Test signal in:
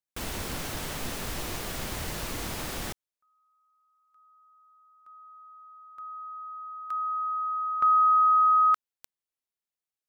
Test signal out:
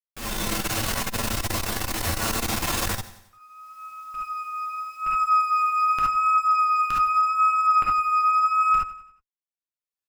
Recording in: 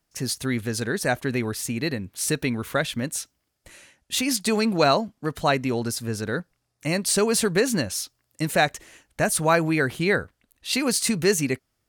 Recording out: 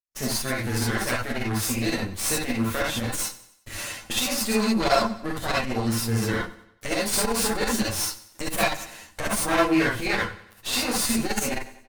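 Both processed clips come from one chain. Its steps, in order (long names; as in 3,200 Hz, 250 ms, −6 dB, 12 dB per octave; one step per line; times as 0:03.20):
lower of the sound and its delayed copy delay 8.8 ms
camcorder AGC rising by 23 dB per second, up to +31 dB
noise gate with hold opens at −45 dBFS, hold 71 ms, range −31 dB
pitch vibrato 0.84 Hz 17 cents
flanger 0.22 Hz, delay 3.9 ms, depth 9.5 ms, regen −49%
on a send: repeating echo 92 ms, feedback 46%, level −17 dB
on the sum: reverb whose tail is shaped and stops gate 90 ms rising, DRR −4 dB
saturating transformer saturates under 150 Hz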